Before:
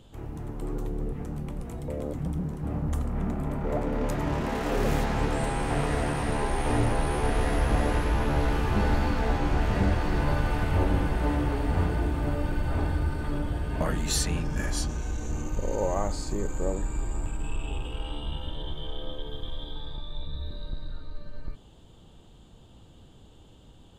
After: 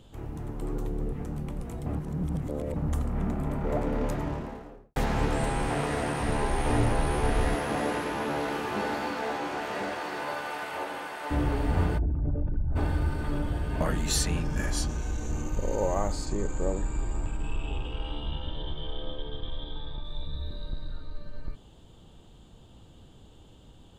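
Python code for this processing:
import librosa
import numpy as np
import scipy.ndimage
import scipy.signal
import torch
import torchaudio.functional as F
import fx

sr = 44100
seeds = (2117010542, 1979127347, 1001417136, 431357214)

y = fx.studio_fade_out(x, sr, start_s=3.86, length_s=1.1)
y = fx.highpass(y, sr, hz=150.0, slope=6, at=(5.7, 6.21))
y = fx.highpass(y, sr, hz=fx.line((7.54, 180.0), (11.3, 770.0)), slope=12, at=(7.54, 11.3), fade=0.02)
y = fx.envelope_sharpen(y, sr, power=2.0, at=(11.97, 12.75), fade=0.02)
y = fx.lowpass(y, sr, hz=fx.line((16.25, 9300.0), (20.03, 3800.0)), slope=24, at=(16.25, 20.03), fade=0.02)
y = fx.edit(y, sr, fx.reverse_span(start_s=1.86, length_s=0.9), tone=tone)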